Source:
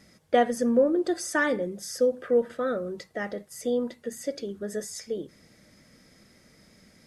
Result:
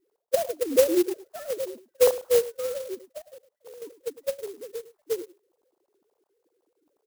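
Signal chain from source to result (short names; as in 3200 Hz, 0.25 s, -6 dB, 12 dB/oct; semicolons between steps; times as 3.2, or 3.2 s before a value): sine-wave speech; LPF 1000 Hz 24 dB/oct; 3.21–3.82 level quantiser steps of 22 dB; outdoor echo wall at 18 m, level -16 dB; clock jitter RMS 0.079 ms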